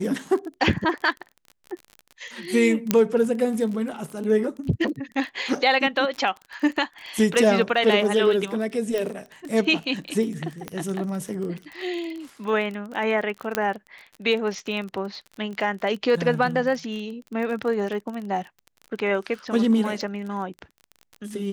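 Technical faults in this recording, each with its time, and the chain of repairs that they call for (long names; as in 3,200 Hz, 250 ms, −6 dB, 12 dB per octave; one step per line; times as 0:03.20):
surface crackle 30 per second −31 dBFS
0:02.91: click −4 dBFS
0:08.98: click −14 dBFS
0:10.68: click −16 dBFS
0:13.55: click −7 dBFS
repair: click removal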